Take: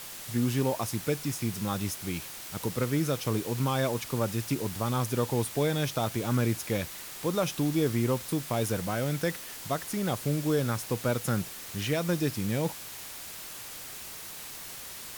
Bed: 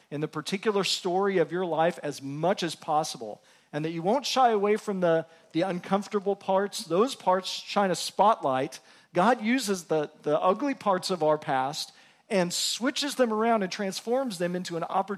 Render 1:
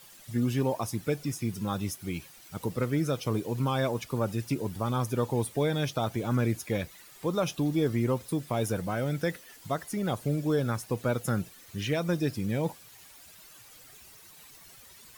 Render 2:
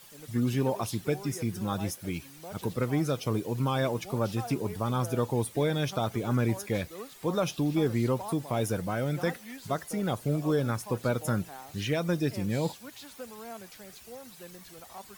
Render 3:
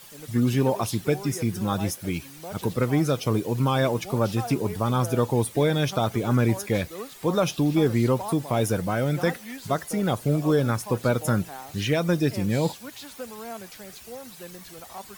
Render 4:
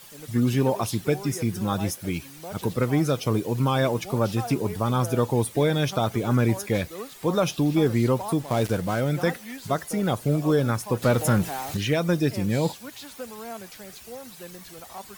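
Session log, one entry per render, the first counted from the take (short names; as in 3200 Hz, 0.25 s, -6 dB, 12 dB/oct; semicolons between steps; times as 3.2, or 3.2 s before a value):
denoiser 13 dB, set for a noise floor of -42 dBFS
add bed -19 dB
gain +5.5 dB
8.4–9.01 switching dead time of 0.092 ms; 11.02–11.77 power-law curve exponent 0.7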